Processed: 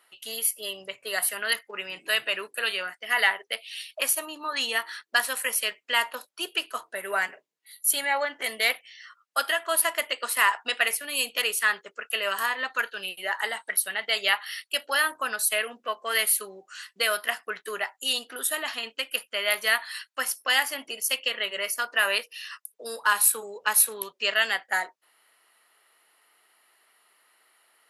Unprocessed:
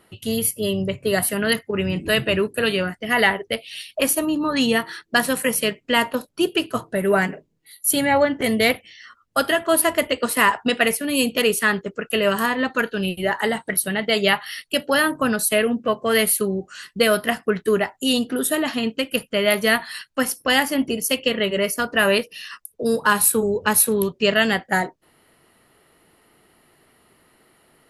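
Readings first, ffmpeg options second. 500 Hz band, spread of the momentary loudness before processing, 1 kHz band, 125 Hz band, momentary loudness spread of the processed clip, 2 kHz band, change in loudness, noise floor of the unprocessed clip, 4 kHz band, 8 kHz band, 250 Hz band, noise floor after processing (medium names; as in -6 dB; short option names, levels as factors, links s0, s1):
-13.5 dB, 7 LU, -6.0 dB, under -30 dB, 11 LU, -3.5 dB, -5.5 dB, -61 dBFS, -3.0 dB, -3.0 dB, -25.5 dB, -72 dBFS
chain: -af "highpass=950,volume=0.708"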